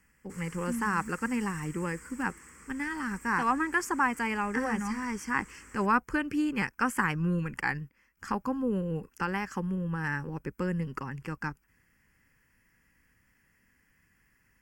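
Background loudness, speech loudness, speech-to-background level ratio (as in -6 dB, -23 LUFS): -50.0 LUFS, -31.5 LUFS, 18.5 dB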